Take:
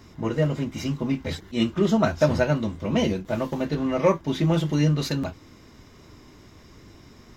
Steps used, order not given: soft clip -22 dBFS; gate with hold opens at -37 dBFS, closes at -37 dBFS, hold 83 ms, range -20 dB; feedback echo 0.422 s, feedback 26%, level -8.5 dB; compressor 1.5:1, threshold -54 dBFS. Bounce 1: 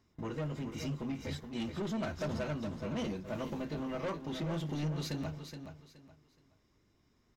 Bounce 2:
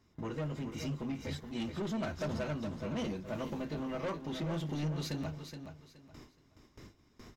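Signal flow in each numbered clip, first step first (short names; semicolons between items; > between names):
soft clip > compressor > gate with hold > feedback echo; soft clip > gate with hold > compressor > feedback echo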